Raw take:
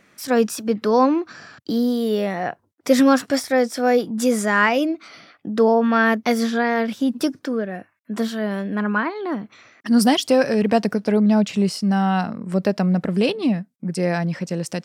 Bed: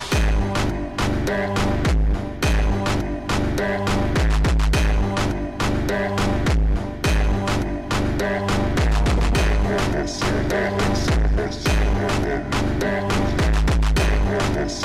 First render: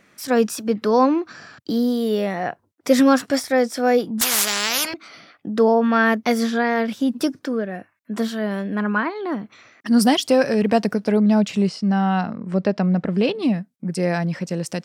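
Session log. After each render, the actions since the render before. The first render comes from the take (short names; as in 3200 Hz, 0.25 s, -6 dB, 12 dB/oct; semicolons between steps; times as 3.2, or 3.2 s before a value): 4.21–4.94 spectral compressor 10:1; 11.67–13.35 air absorption 100 m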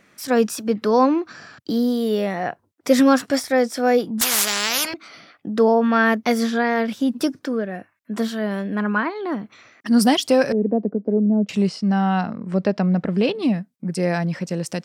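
10.52–11.49 Butterworth band-pass 320 Hz, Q 0.98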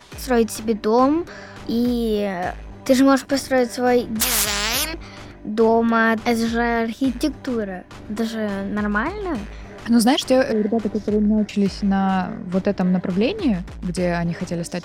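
add bed -17.5 dB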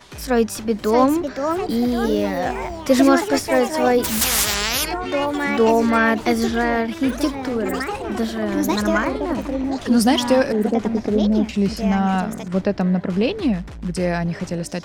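echoes that change speed 0.696 s, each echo +4 st, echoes 3, each echo -6 dB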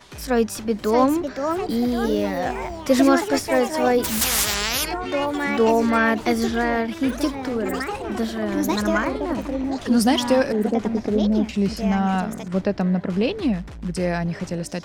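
gain -2 dB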